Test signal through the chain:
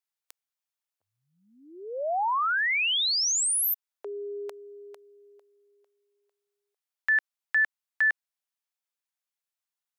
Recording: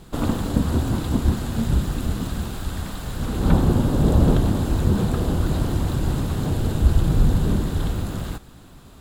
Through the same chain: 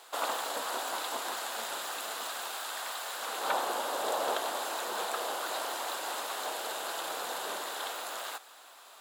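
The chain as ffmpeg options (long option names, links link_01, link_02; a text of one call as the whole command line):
ffmpeg -i in.wav -af "highpass=frequency=630:width=0.5412,highpass=frequency=630:width=1.3066,volume=1dB" out.wav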